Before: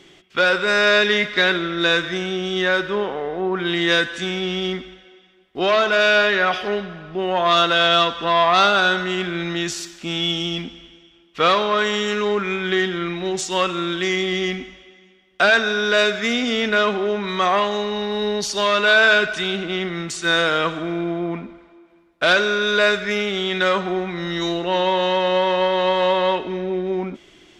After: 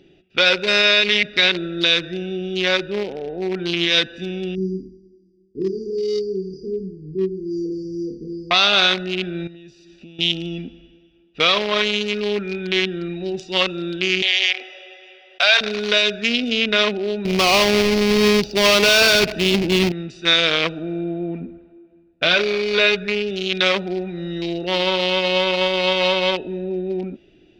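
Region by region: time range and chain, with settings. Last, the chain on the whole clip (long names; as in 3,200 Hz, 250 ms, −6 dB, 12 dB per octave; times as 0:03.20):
0:04.55–0:08.51: linear-phase brick-wall band-stop 480–4,500 Hz + flutter between parallel walls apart 4.5 metres, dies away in 0.42 s
0:09.47–0:10.19: parametric band 1,100 Hz −6 dB 0.82 octaves + downward compressor 8 to 1, threshold −36 dBFS
0:14.22–0:15.61: Butterworth high-pass 520 Hz + envelope flattener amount 50%
0:17.25–0:19.92: each half-wave held at its own peak + tilt shelving filter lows +3.5 dB, about 1,100 Hz
0:21.40–0:23.31: bass and treble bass +4 dB, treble −10 dB + double-tracking delay 12 ms −9 dB
whole clip: adaptive Wiener filter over 41 samples; flat-topped bell 3,500 Hz +12.5 dB; boost into a limiter +4.5 dB; level −4 dB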